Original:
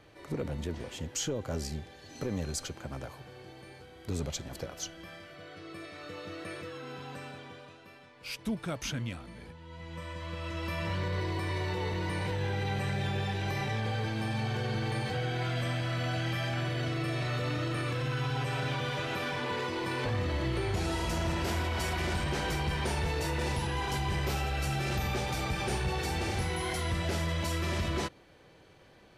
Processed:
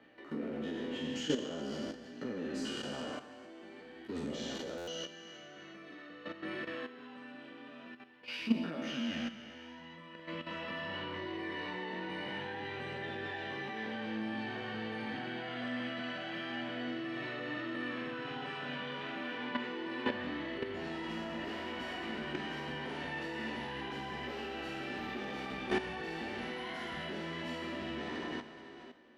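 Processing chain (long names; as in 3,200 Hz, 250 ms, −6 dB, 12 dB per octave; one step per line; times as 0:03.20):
peak hold with a decay on every bin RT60 2.30 s
high-shelf EQ 8,400 Hz −3.5 dB
multi-voice chorus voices 2, 0.23 Hz, delay 16 ms, depth 3.8 ms
three-way crossover with the lows and the highs turned down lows −18 dB, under 210 Hz, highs −18 dB, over 4,100 Hz
output level in coarse steps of 11 dB
hollow resonant body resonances 240/1,800/2,900 Hz, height 12 dB, ringing for 40 ms
buffer that repeats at 0:04.77, samples 512, times 8
level +1 dB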